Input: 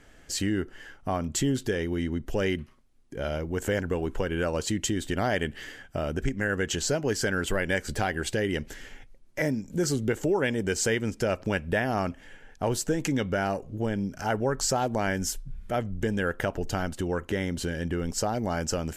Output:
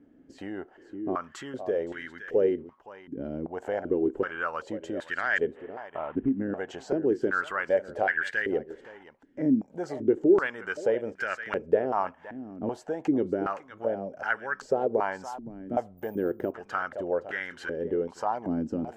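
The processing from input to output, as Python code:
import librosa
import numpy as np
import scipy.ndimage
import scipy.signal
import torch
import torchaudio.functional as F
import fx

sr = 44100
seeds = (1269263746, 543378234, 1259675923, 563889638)

p1 = fx.cvsd(x, sr, bps=16000, at=(5.51, 6.39))
p2 = p1 + fx.echo_single(p1, sr, ms=517, db=-13.0, dry=0)
p3 = fx.resample_bad(p2, sr, factor=3, down='none', up='zero_stuff', at=(15.97, 16.52))
p4 = fx.filter_held_bandpass(p3, sr, hz=2.6, low_hz=270.0, high_hz=1600.0)
y = p4 * librosa.db_to_amplitude(9.0)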